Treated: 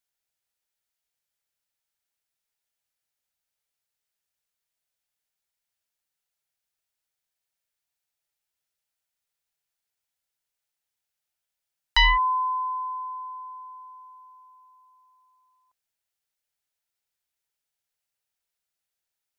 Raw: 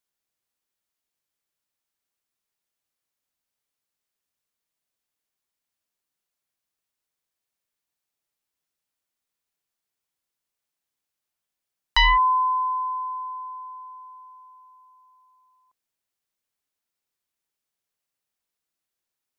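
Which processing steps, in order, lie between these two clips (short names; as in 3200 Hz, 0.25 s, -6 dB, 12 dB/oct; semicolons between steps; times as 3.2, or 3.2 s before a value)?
bell 270 Hz -9.5 dB 1.3 oct; notch 1100 Hz, Q 6.3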